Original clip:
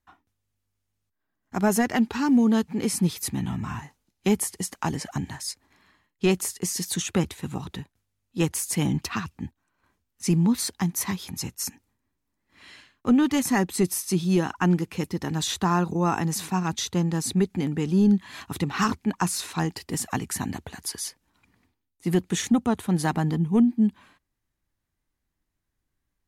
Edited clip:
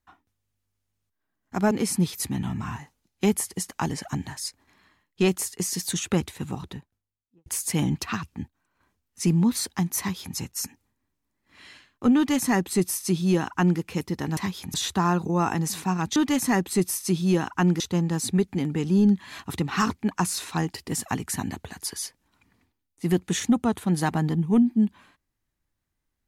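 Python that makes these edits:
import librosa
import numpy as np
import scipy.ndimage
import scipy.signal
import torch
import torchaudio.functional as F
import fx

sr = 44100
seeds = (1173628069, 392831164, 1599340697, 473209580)

y = fx.studio_fade_out(x, sr, start_s=7.47, length_s=1.02)
y = fx.edit(y, sr, fx.cut(start_s=1.71, length_s=1.03),
    fx.duplicate(start_s=11.02, length_s=0.37, to_s=15.4),
    fx.duplicate(start_s=13.19, length_s=1.64, to_s=16.82), tone=tone)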